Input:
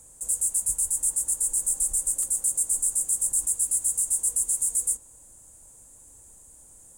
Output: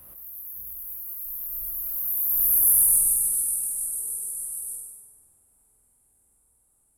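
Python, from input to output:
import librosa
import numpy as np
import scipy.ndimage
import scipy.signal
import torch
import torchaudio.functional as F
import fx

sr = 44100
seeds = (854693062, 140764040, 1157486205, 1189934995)

y = fx.spec_dilate(x, sr, span_ms=60)
y = fx.doppler_pass(y, sr, speed_mps=52, closest_m=13.0, pass_at_s=2.69)
y = fx.wow_flutter(y, sr, seeds[0], rate_hz=2.1, depth_cents=19.0)
y = fx.formant_shift(y, sr, semitones=5)
y = fx.room_flutter(y, sr, wall_m=8.4, rt60_s=1.2)
y = fx.pre_swell(y, sr, db_per_s=35.0)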